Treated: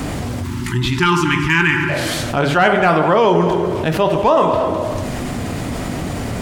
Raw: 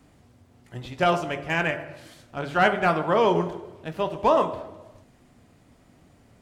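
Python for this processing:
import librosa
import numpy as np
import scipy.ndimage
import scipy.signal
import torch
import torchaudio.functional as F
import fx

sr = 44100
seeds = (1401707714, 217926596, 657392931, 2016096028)

p1 = fx.spec_erase(x, sr, start_s=0.44, length_s=1.46, low_hz=400.0, high_hz=840.0)
p2 = p1 + fx.echo_single(p1, sr, ms=232, db=-19.0, dry=0)
p3 = fx.env_flatten(p2, sr, amount_pct=70)
y = p3 * librosa.db_to_amplitude(5.0)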